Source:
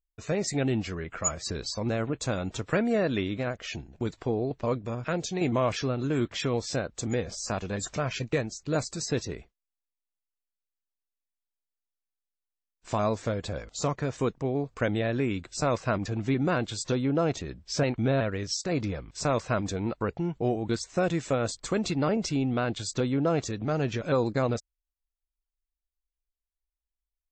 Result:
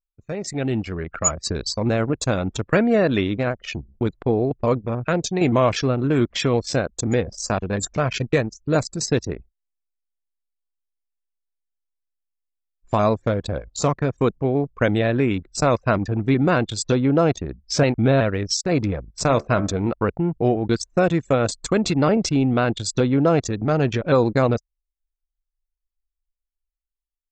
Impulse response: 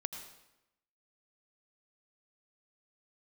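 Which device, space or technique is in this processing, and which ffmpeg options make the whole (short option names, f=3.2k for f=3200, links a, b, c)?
voice memo with heavy noise removal: -filter_complex "[0:a]asettb=1/sr,asplit=3[a][b][c];[a]atrim=end=19.264[d];[b]atrim=start=19.26:end=19.88,asetpts=PTS-STARTPTS,afade=t=in:d=0.004:c=qsin,afade=t=out:st=0.616:d=0.004:c=qsin,bandreject=f=72.67:t=h:w=4,bandreject=f=145.34:t=h:w=4,bandreject=f=218.01:t=h:w=4,bandreject=f=290.68:t=h:w=4,bandreject=f=363.35:t=h:w=4,bandreject=f=436.02:t=h:w=4,bandreject=f=508.69:t=h:w=4,bandreject=f=581.36:t=h:w=4,bandreject=f=654.03:t=h:w=4,bandreject=f=726.7:t=h:w=4,bandreject=f=799.37:t=h:w=4,bandreject=f=872.04:t=h:w=4,bandreject=f=944.71:t=h:w=4,bandreject=f=1.01738k:t=h:w=4,bandreject=f=1.09005k:t=h:w=4,bandreject=f=1.16272k:t=h:w=4,bandreject=f=1.23539k:t=h:w=4,bandreject=f=1.30806k:t=h:w=4,bandreject=f=1.38073k:t=h:w=4,bandreject=f=1.4534k:t=h:w=4,bandreject=f=1.52607k:t=h:w=4,bandreject=f=1.59874k:t=h:w=4,bandreject=f=1.67141k:t=h:w=4,bandreject=f=1.74408k:t=h:w=4,bandreject=f=1.81675k:t=h:w=4,bandreject=f=1.88942k:t=h:w=4,bandreject=f=1.96209k:t=h:w=4,bandreject=f=2.03476k:t=h:w=4,bandreject=f=2.10743k:t=h:w=4,bandreject=f=2.1801k:t=h:w=4,bandreject=f=2.25277k:t=h:w=4,bandreject=f=2.32544k:t=h:w=4,bandreject=f=2.39811k:t=h:w=4,bandreject=f=2.47078k:t=h:w=4,bandreject=f=2.54345k:t=h:w=4[e];[c]atrim=start=19.876[f];[d][e]acrossfade=d=0.004:c1=hsin:c2=qsin[g];[g][f]acrossfade=d=0.004:c1=qsin:c2=hsin,anlmdn=3.98,dynaudnorm=f=140:g=11:m=10dB,volume=-1.5dB"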